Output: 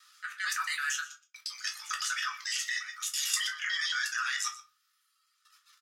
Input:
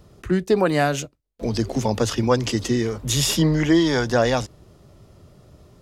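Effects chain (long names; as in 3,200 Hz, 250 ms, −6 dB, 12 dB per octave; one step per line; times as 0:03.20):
reversed piece by piece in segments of 112 ms
reverb reduction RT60 1.3 s
dynamic equaliser 3,900 Hz, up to −6 dB, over −43 dBFS, Q 1.6
transient designer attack +3 dB, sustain −2 dB
Chebyshev high-pass with heavy ripple 1,200 Hz, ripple 3 dB
transient designer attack −7 dB, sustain +5 dB
output level in coarse steps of 14 dB
single-tap delay 122 ms −17 dB
rectangular room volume 120 cubic metres, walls furnished, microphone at 1.4 metres
level +7 dB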